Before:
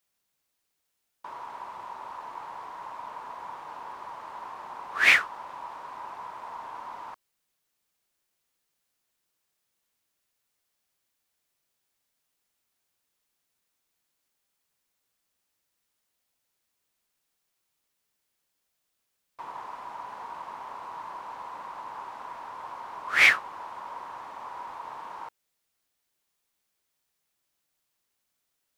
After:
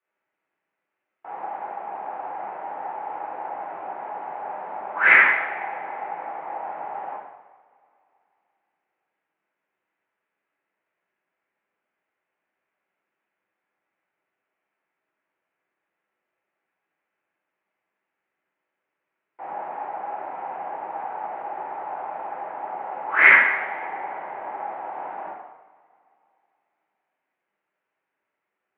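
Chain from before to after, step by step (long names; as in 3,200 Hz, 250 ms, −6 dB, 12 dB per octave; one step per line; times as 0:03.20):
mains-hum notches 50/100/150/200/250/300/350/400/450 Hz
coupled-rooms reverb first 0.86 s, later 2.9 s, from −20 dB, DRR −8.5 dB
single-sideband voice off tune −160 Hz 390–2,500 Hz
level −1.5 dB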